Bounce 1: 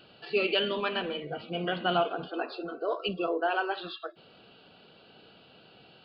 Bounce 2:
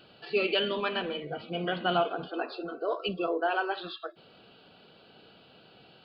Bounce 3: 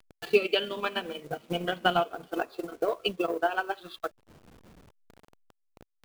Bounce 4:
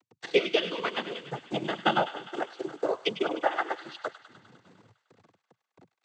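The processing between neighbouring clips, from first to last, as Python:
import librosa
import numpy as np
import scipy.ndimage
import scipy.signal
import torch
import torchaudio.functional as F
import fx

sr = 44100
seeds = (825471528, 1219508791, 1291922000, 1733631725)

y1 = fx.notch(x, sr, hz=2800.0, q=27.0)
y2 = fx.delta_hold(y1, sr, step_db=-45.5)
y2 = fx.transient(y2, sr, attack_db=11, sustain_db=-8)
y2 = F.gain(torch.from_numpy(y2), -3.0).numpy()
y3 = fx.noise_vocoder(y2, sr, seeds[0], bands=16)
y3 = fx.echo_wet_highpass(y3, sr, ms=101, feedback_pct=70, hz=1500.0, wet_db=-11.0)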